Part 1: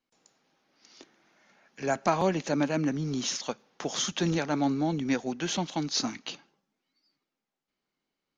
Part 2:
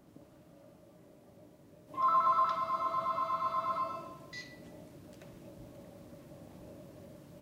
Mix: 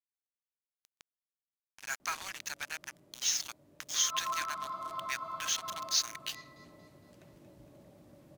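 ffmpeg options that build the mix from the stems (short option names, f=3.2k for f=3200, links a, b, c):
-filter_complex "[0:a]highpass=f=1.4k:w=0.5412,highpass=f=1.4k:w=1.3066,adynamicequalizer=threshold=0.00282:dfrequency=6400:dqfactor=6.7:tfrequency=6400:tqfactor=6.7:attack=5:release=100:ratio=0.375:range=2.5:mode=boostabove:tftype=bell,acrusher=bits=5:mix=0:aa=0.5,volume=-0.5dB,asplit=2[a][b];[1:a]adelay=2000,volume=-6dB,asplit=2[c][d];[d]volume=-9dB[e];[b]apad=whole_len=415097[f];[c][f]sidechaincompress=threshold=-41dB:ratio=8:attack=43:release=123[g];[e]aecho=0:1:231|462|693|924|1155|1386|1617:1|0.49|0.24|0.118|0.0576|0.0282|0.0138[h];[a][g][h]amix=inputs=3:normalize=0"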